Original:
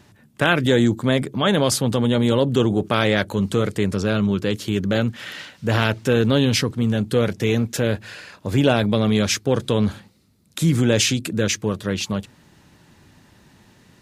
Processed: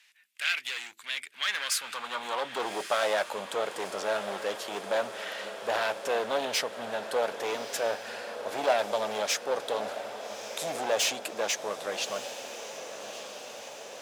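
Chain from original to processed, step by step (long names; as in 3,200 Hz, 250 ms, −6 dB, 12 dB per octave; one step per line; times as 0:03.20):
tube saturation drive 7 dB, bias 0.7
gain into a clipping stage and back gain 20.5 dB
high-pass filter sweep 2,300 Hz → 680 Hz, 0:01.27–0:02.74
on a send: feedback delay with all-pass diffusion 1,232 ms, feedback 67%, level −10.5 dB
on the sum: level −2 dB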